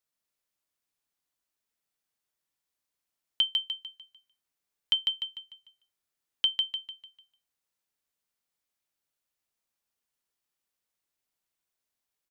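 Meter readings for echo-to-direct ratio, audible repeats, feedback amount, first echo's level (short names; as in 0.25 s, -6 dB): -4.5 dB, 4, 39%, -5.0 dB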